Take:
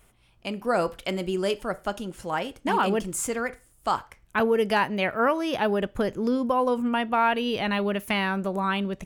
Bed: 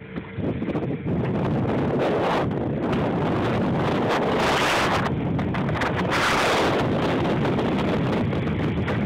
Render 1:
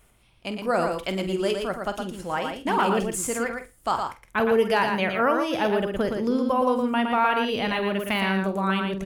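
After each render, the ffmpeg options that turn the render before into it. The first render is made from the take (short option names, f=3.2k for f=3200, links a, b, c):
-filter_complex "[0:a]asplit=2[a][b];[b]adelay=47,volume=-11.5dB[c];[a][c]amix=inputs=2:normalize=0,asplit=2[d][e];[e]aecho=0:1:115:0.562[f];[d][f]amix=inputs=2:normalize=0"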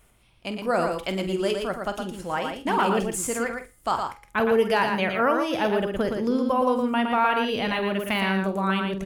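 -af "bandreject=f=412.9:t=h:w=4,bandreject=f=825.8:t=h:w=4,bandreject=f=1.2387k:t=h:w=4,bandreject=f=1.6516k:t=h:w=4,bandreject=f=2.0645k:t=h:w=4,bandreject=f=2.4774k:t=h:w=4,bandreject=f=2.8903k:t=h:w=4,bandreject=f=3.3032k:t=h:w=4,bandreject=f=3.7161k:t=h:w=4,bandreject=f=4.129k:t=h:w=4,bandreject=f=4.5419k:t=h:w=4,bandreject=f=4.9548k:t=h:w=4,bandreject=f=5.3677k:t=h:w=4,bandreject=f=5.7806k:t=h:w=4,bandreject=f=6.1935k:t=h:w=4,bandreject=f=6.6064k:t=h:w=4,bandreject=f=7.0193k:t=h:w=4,bandreject=f=7.4322k:t=h:w=4,bandreject=f=7.8451k:t=h:w=4,bandreject=f=8.258k:t=h:w=4,bandreject=f=8.6709k:t=h:w=4,bandreject=f=9.0838k:t=h:w=4,bandreject=f=9.4967k:t=h:w=4,bandreject=f=9.9096k:t=h:w=4,bandreject=f=10.3225k:t=h:w=4,bandreject=f=10.7354k:t=h:w=4,bandreject=f=11.1483k:t=h:w=4,bandreject=f=11.5612k:t=h:w=4,bandreject=f=11.9741k:t=h:w=4,bandreject=f=12.387k:t=h:w=4,bandreject=f=12.7999k:t=h:w=4,bandreject=f=13.2128k:t=h:w=4,bandreject=f=13.6257k:t=h:w=4,bandreject=f=14.0386k:t=h:w=4,bandreject=f=14.4515k:t=h:w=4,bandreject=f=14.8644k:t=h:w=4"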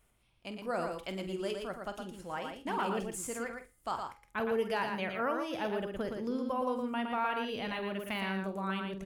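-af "volume=-11dB"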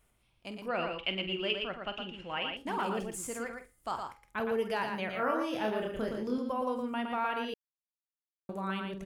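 -filter_complex "[0:a]asettb=1/sr,asplit=3[a][b][c];[a]atrim=end=0.684[d];[b]atrim=start=0.68:end=2.57,asetpts=PTS-STARTPTS,afade=t=in:d=0.004:c=qsin,afade=t=out:st=1.886:d=0.004:c=qsin,lowpass=f=2.8k:t=q:w=7.5[e];[c]atrim=start=2.566[f];[d][e]acrossfade=d=0.004:c1=hsin:c2=qsin[g];[g][f]acrossfade=d=0.004:c1=qsin:c2=hsin,asettb=1/sr,asplit=3[h][i][j];[h]atrim=end=5.104[k];[i]atrim=start=5.1:end=6.38,asetpts=PTS-STARTPTS,afade=t=in:d=0.004:c=qsin,afade=t=out:st=1.276:d=0.004:c=qsin,asplit=2[l][m];[m]adelay=28,volume=-3dB[n];[l][n]amix=inputs=2:normalize=0,atrim=end_sample=56448[o];[j]atrim=start=6.376[p];[k][o]acrossfade=d=0.004:c1=hsin:c2=qsin[q];[q][p]acrossfade=d=0.004:c1=qsin:c2=hsin,asplit=3[r][s][t];[r]atrim=end=7.54,asetpts=PTS-STARTPTS,afade=t=out:st=7.536:d=0.004:c=hsin[u];[s]atrim=start=7.54:end=8.49,asetpts=PTS-STARTPTS,volume=0[v];[t]atrim=start=8.49,asetpts=PTS-STARTPTS,afade=t=in:d=0.004:c=hsin[w];[u][v][w]concat=n=3:v=0:a=1"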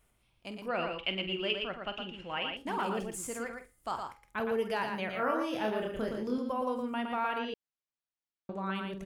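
-filter_complex "[0:a]asettb=1/sr,asplit=3[a][b][c];[a]atrim=end=7.384[d];[b]atrim=start=7.38:end=8.75,asetpts=PTS-STARTPTS,afade=t=in:d=0.004:c=qsin,afade=t=out:st=1.366:d=0.004:c=qsin,lowpass=4.9k[e];[c]atrim=start=8.746[f];[d][e]acrossfade=d=0.004:c1=hsin:c2=qsin[g];[g][f]acrossfade=d=0.004:c1=qsin:c2=hsin"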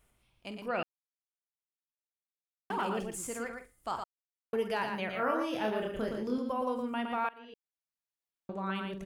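-filter_complex "[0:a]asplit=6[a][b][c][d][e][f];[a]atrim=end=0.83,asetpts=PTS-STARTPTS,afade=t=out:st=0.826:d=0.004:c=hsin[g];[b]atrim=start=0.83:end=2.7,asetpts=PTS-STARTPTS,volume=0[h];[c]atrim=start=2.7:end=4.04,asetpts=PTS-STARTPTS,afade=t=in:d=0.004:c=hsin,afade=t=out:st=1.336:d=0.004:c=hsin[i];[d]atrim=start=4.04:end=4.53,asetpts=PTS-STARTPTS,volume=0[j];[e]atrim=start=4.53:end=7.29,asetpts=PTS-STARTPTS,afade=t=in:d=0.004:c=hsin,afade=t=out:st=2.756:d=0.004:c=hsin:silence=0.0707946[k];[f]atrim=start=7.29,asetpts=PTS-STARTPTS,afade=t=in:d=1.23:silence=0.0707946[l];[g][h][i][j][k][l]concat=n=6:v=0:a=1"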